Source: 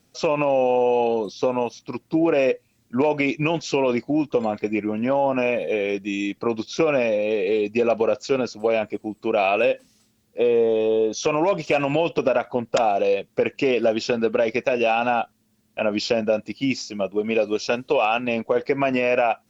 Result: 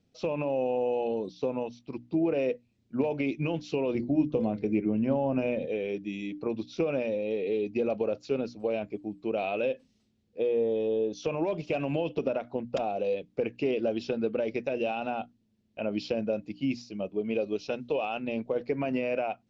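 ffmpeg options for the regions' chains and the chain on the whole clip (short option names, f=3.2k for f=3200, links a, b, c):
-filter_complex "[0:a]asettb=1/sr,asplit=3[a][b][c];[a]atrim=end=3.954[d];[b]atrim=start=3.95:end=5.66,asetpts=PTS-STARTPTS,afade=t=in:d=0.004:c=qsin,afade=t=out:st=1.706:d=0.004:c=qsin,lowshelf=f=280:g=8.5,bandreject=f=50:t=h:w=6,bandreject=f=100:t=h:w=6,bandreject=f=150:t=h:w=6,bandreject=f=200:t=h:w=6,bandreject=f=250:t=h:w=6,bandreject=f=300:t=h:w=6,bandreject=f=350:t=h:w=6,bandreject=f=400:t=h:w=6,bandreject=f=450:t=h:w=6,bandreject=f=500:t=h:w=6[e];[c]atrim=start=5.656[f];[d][e]acrossfade=d=0.004:c1=hsin:c2=qsin[g];[g][f]acrossfade=d=0.004:c1=qsin:c2=hsin,lowpass=3.2k,equalizer=f=1.3k:w=0.58:g=-12,bandreject=f=60:t=h:w=6,bandreject=f=120:t=h:w=6,bandreject=f=180:t=h:w=6,bandreject=f=240:t=h:w=6,bandreject=f=300:t=h:w=6,volume=-4dB"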